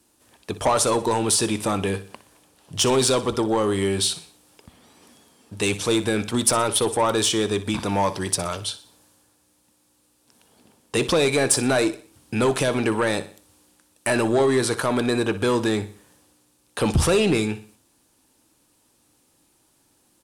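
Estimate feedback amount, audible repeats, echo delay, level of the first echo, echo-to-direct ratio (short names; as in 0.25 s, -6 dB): 42%, 3, 61 ms, -15.0 dB, -14.0 dB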